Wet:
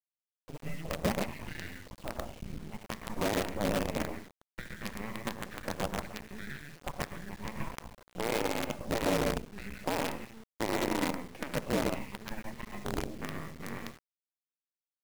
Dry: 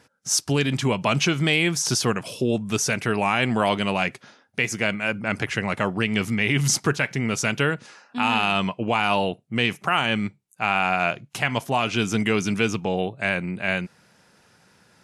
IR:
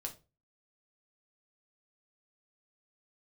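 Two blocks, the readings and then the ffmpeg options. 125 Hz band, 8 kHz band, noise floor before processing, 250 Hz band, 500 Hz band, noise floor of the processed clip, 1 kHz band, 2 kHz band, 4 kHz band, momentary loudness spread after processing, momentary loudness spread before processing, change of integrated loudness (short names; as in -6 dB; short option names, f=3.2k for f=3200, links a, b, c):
-14.0 dB, -17.0 dB, -60 dBFS, -11.5 dB, -9.5 dB, under -85 dBFS, -13.0 dB, -16.5 dB, -15.5 dB, 13 LU, 5 LU, -13.0 dB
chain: -filter_complex "[0:a]acompressor=threshold=-32dB:ratio=3,asplit=2[a][b];[1:a]atrim=start_sample=2205,adelay=117[c];[b][c]afir=irnorm=-1:irlink=0,volume=0dB[d];[a][d]amix=inputs=2:normalize=0,aeval=exprs='val(0)+0.00158*(sin(2*PI*60*n/s)+sin(2*PI*2*60*n/s)/2+sin(2*PI*3*60*n/s)/3+sin(2*PI*4*60*n/s)/4+sin(2*PI*5*60*n/s)/5)':c=same,highpass=f=250:w=0.5412,highpass=f=250:w=1.3066,equalizer=f=340:t=q:w=4:g=-7,equalizer=f=660:t=q:w=4:g=6,equalizer=f=990:t=q:w=4:g=9,equalizer=f=1.7k:t=q:w=4:g=-9,equalizer=f=2.5k:t=q:w=4:g=-4,lowpass=f=3.4k:w=0.5412,lowpass=f=3.4k:w=1.3066,afreqshift=-430,afftfilt=real='re*gte(hypot(re,im),0.0158)':imag='im*gte(hypot(re,im),0.0158)':win_size=1024:overlap=0.75,aecho=1:1:14|69:0.188|0.299,acrossover=split=2500[e][f];[f]acompressor=threshold=-57dB:ratio=4:attack=1:release=60[g];[e][g]amix=inputs=2:normalize=0,acrusher=bits=5:dc=4:mix=0:aa=0.000001,volume=-3dB"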